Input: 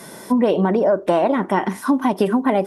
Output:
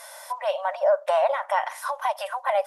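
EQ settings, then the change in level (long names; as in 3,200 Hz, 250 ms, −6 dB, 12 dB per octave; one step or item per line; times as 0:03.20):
linear-phase brick-wall high-pass 530 Hz
−2.5 dB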